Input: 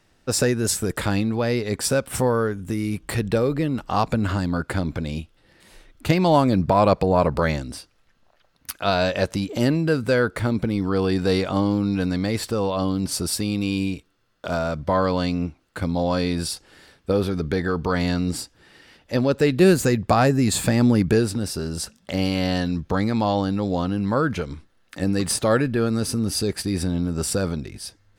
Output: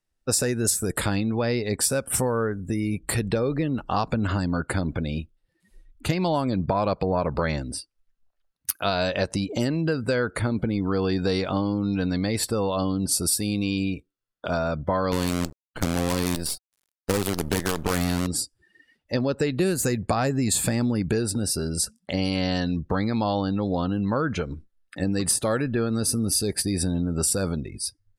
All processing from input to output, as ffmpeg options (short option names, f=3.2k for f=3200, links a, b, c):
-filter_complex "[0:a]asettb=1/sr,asplit=3[a][b][c];[a]atrim=end=15.124[d];[b]atrim=start=15.12:end=18.27,asetpts=PTS-STARTPTS,afade=t=in:d=0.004:c=qsin,afade=t=out:st=3.146:d=0.004:c=qsin,lowshelf=f=350:g=2.5,bandreject=f=60:t=h:w=6,bandreject=f=120:t=h:w=6,acrusher=bits=4:dc=4:mix=0:aa=0.000001[e];[c]atrim=start=18.266[f];[d][e]acrossfade=d=0.004:c1=hsin:c2=qsin[g];[g][f]acrossfade=d=0.004:c1=qsin:c2=hsin,afftdn=nr=25:nf=-42,equalizer=f=11k:w=0.6:g=10,acompressor=threshold=-20dB:ratio=6"